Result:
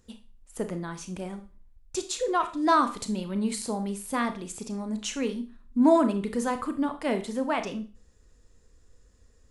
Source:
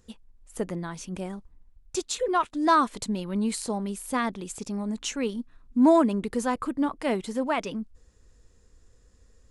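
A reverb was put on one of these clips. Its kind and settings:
four-comb reverb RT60 0.36 s, combs from 26 ms, DRR 8 dB
level −1.5 dB

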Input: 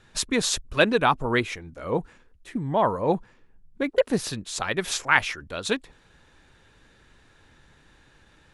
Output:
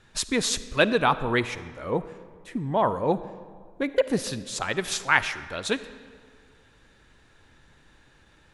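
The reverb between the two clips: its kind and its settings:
comb and all-pass reverb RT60 1.9 s, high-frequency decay 0.7×, pre-delay 15 ms, DRR 14 dB
level −1 dB

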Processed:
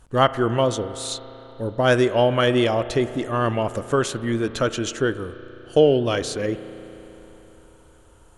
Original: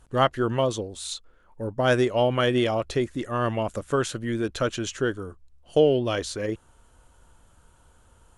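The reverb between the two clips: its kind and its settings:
spring reverb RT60 3.8 s, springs 34 ms, chirp 60 ms, DRR 13 dB
level +3.5 dB

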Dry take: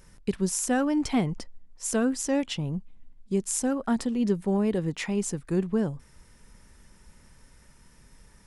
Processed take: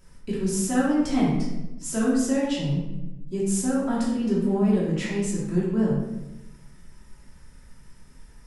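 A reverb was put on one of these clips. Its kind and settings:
rectangular room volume 390 cubic metres, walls mixed, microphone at 2.9 metres
level −6.5 dB

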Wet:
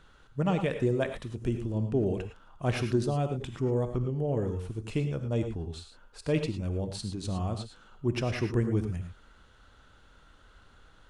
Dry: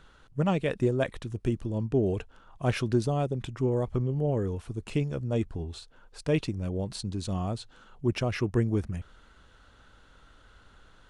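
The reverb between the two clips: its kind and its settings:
reverb whose tail is shaped and stops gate 130 ms rising, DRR 7 dB
level −2 dB

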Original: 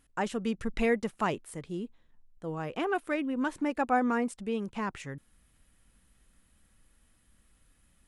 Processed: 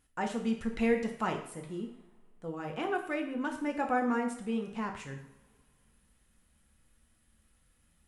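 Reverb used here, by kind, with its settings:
coupled-rooms reverb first 0.58 s, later 2.4 s, from −22 dB, DRR 2 dB
level −4.5 dB

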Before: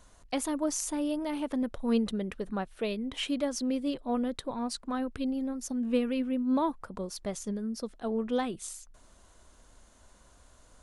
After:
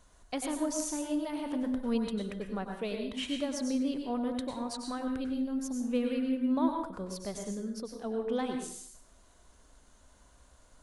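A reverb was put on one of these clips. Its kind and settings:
dense smooth reverb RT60 0.55 s, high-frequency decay 0.95×, pre-delay 85 ms, DRR 3 dB
level −4 dB

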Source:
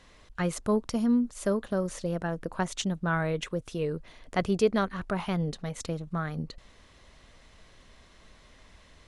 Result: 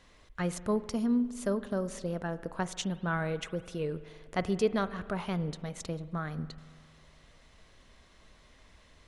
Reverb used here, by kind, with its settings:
spring reverb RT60 1.9 s, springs 45 ms, chirp 75 ms, DRR 14.5 dB
level −3.5 dB

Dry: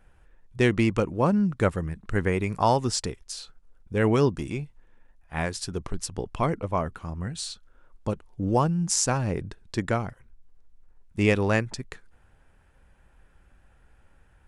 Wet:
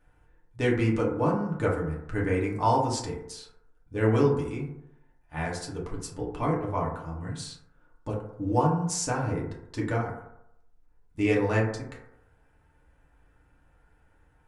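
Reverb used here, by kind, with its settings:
feedback delay network reverb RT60 0.8 s, low-frequency decay 0.85×, high-frequency decay 0.3×, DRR −4.5 dB
level −8.5 dB

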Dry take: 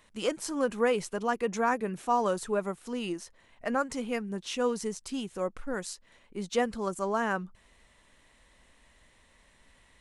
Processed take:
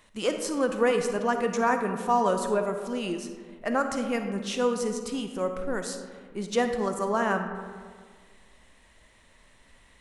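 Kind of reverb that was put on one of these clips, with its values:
comb and all-pass reverb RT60 1.8 s, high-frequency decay 0.4×, pre-delay 10 ms, DRR 6 dB
level +2.5 dB

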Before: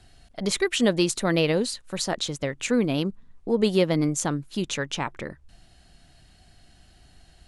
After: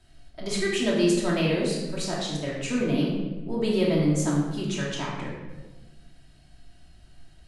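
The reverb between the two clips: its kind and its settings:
rectangular room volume 780 cubic metres, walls mixed, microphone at 2.8 metres
level −8.5 dB

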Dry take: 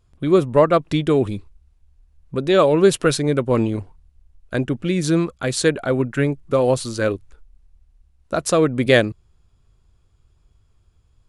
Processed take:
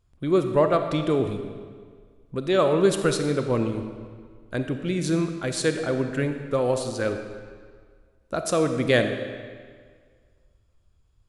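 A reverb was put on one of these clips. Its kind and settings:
comb and all-pass reverb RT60 1.8 s, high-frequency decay 0.85×, pre-delay 5 ms, DRR 6.5 dB
level −6 dB

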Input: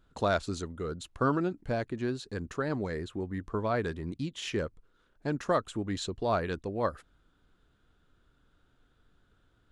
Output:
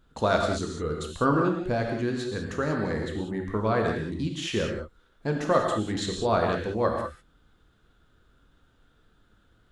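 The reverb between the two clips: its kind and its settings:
reverb whose tail is shaped and stops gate 220 ms flat, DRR 1 dB
level +3 dB

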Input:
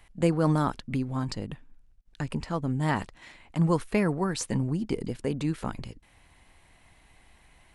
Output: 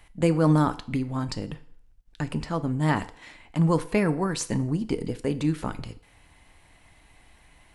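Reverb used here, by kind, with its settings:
feedback delay network reverb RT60 0.56 s, low-frequency decay 0.7×, high-frequency decay 0.9×, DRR 11 dB
level +2 dB

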